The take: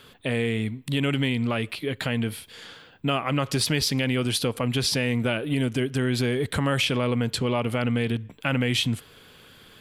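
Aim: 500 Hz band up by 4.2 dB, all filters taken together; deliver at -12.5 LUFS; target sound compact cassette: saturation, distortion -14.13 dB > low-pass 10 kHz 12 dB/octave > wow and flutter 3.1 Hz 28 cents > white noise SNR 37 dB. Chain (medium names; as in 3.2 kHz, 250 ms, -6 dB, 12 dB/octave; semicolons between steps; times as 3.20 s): peaking EQ 500 Hz +5 dB; saturation -18 dBFS; low-pass 10 kHz 12 dB/octave; wow and flutter 3.1 Hz 28 cents; white noise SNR 37 dB; trim +14 dB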